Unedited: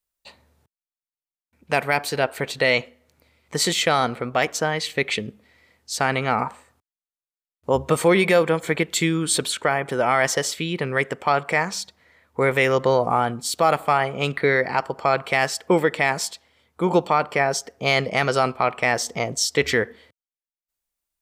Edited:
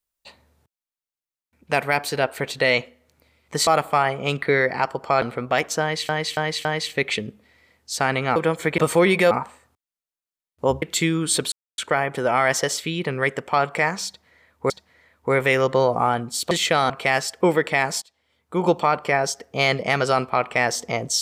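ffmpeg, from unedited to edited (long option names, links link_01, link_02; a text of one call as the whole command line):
ffmpeg -i in.wav -filter_complex "[0:a]asplit=15[link_01][link_02][link_03][link_04][link_05][link_06][link_07][link_08][link_09][link_10][link_11][link_12][link_13][link_14][link_15];[link_01]atrim=end=3.672[link_16];[link_02]atrim=start=13.618:end=15.172[link_17];[link_03]atrim=start=4.058:end=4.932[link_18];[link_04]atrim=start=4.648:end=4.932[link_19];[link_05]atrim=start=4.648:end=4.932[link_20];[link_06]atrim=start=4.648:end=6.362[link_21];[link_07]atrim=start=8.398:end=8.822[link_22];[link_08]atrim=start=7.868:end=8.402[link_23];[link_09]atrim=start=6.358:end=7.872[link_24];[link_10]atrim=start=8.818:end=9.52,asetpts=PTS-STARTPTS,afade=type=out:start_time=0.698:duration=0.004:curve=hsin,apad=pad_dur=0.26[link_25];[link_11]atrim=start=9.52:end=12.442,asetpts=PTS-STARTPTS,afade=type=in:duration=0.004:curve=hsin[link_26];[link_12]atrim=start=11.808:end=13.622[link_27];[link_13]atrim=start=3.668:end=4.062[link_28];[link_14]atrim=start=15.168:end=16.29,asetpts=PTS-STARTPTS,afade=type=out:start_time=1.118:duration=0.004:curve=hsin:silence=0.0891251[link_29];[link_15]atrim=start=16.29,asetpts=PTS-STARTPTS,afade=type=in:duration=0.68:silence=0.0891251[link_30];[link_16][link_17]acrossfade=duration=0.004:curve1=hsin:curve2=hsin[link_31];[link_31][link_18]acrossfade=duration=0.004:curve1=hsin:curve2=hsin[link_32];[link_32][link_19]acrossfade=duration=0.004:curve1=hsin:curve2=hsin[link_33];[link_33][link_20]acrossfade=duration=0.004:curve1=hsin:curve2=hsin[link_34];[link_34][link_21]acrossfade=duration=0.004:curve1=hsin:curve2=hsin[link_35];[link_35][link_22]acrossfade=duration=0.004:curve1=hsin:curve2=hsin[link_36];[link_36][link_23]acrossfade=duration=0.004:curve1=hsin:curve2=hsin[link_37];[link_37][link_24]acrossfade=duration=0.004:curve1=hsin:curve2=hsin[link_38];[link_25][link_26]concat=n=2:v=0:a=1[link_39];[link_38][link_39]acrossfade=duration=0.004:curve1=hsin:curve2=hsin[link_40];[link_40][link_27]acrossfade=duration=0.004:curve1=hsin:curve2=hsin[link_41];[link_41][link_28]acrossfade=duration=0.004:curve1=hsin:curve2=hsin[link_42];[link_29][link_30]concat=n=2:v=0:a=1[link_43];[link_42][link_43]acrossfade=duration=0.004:curve1=hsin:curve2=hsin" out.wav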